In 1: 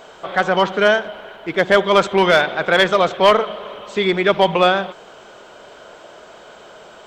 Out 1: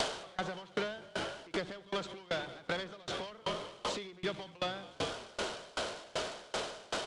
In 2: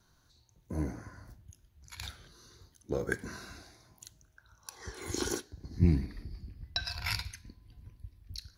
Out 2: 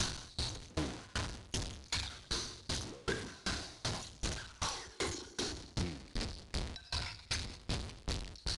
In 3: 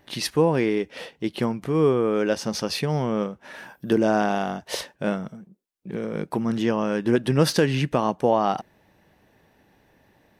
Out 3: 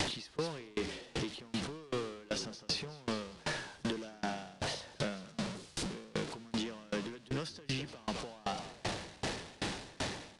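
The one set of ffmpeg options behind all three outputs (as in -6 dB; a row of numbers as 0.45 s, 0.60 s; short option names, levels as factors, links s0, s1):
-filter_complex "[0:a]aeval=exprs='val(0)+0.5*0.0422*sgn(val(0))':c=same,asplit=2[s0][s1];[s1]asplit=5[s2][s3][s4][s5][s6];[s2]adelay=203,afreqshift=-41,volume=0.211[s7];[s3]adelay=406,afreqshift=-82,volume=0.104[s8];[s4]adelay=609,afreqshift=-123,volume=0.0507[s9];[s5]adelay=812,afreqshift=-164,volume=0.0248[s10];[s6]adelay=1015,afreqshift=-205,volume=0.0122[s11];[s7][s8][s9][s10][s11]amix=inputs=5:normalize=0[s12];[s0][s12]amix=inputs=2:normalize=0,acrossover=split=260|1300[s13][s14][s15];[s13]acompressor=threshold=0.0224:ratio=4[s16];[s14]acompressor=threshold=0.0398:ratio=4[s17];[s15]acompressor=threshold=0.0141:ratio=4[s18];[s16][s17][s18]amix=inputs=3:normalize=0,asplit=2[s19][s20];[s20]aeval=exprs='0.0531*(abs(mod(val(0)/0.0531+3,4)-2)-1)':c=same,volume=0.501[s21];[s19][s21]amix=inputs=2:normalize=0,equalizer=f=4200:t=o:w=1.5:g=9,aresample=22050,aresample=44100,acompressor=threshold=0.0355:ratio=6,aeval=exprs='val(0)*pow(10,-28*if(lt(mod(2.6*n/s,1),2*abs(2.6)/1000),1-mod(2.6*n/s,1)/(2*abs(2.6)/1000),(mod(2.6*n/s,1)-2*abs(2.6)/1000)/(1-2*abs(2.6)/1000))/20)':c=same"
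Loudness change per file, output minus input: -22.5 LU, -4.0 LU, -15.5 LU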